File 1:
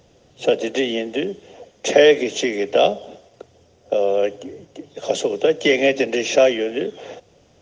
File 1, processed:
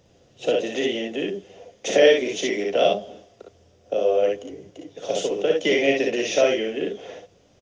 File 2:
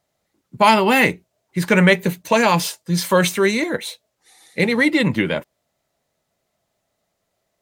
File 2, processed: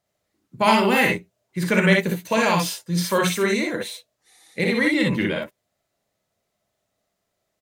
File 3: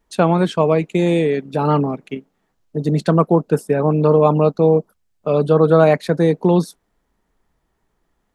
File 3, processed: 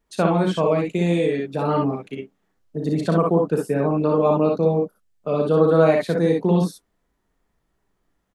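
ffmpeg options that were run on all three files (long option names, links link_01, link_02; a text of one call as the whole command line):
ffmpeg -i in.wav -filter_complex "[0:a]equalizer=frequency=870:width_type=o:width=0.32:gain=-3,asplit=2[link_01][link_02];[link_02]aecho=0:1:36|58|68:0.355|0.668|0.501[link_03];[link_01][link_03]amix=inputs=2:normalize=0,volume=-5.5dB" out.wav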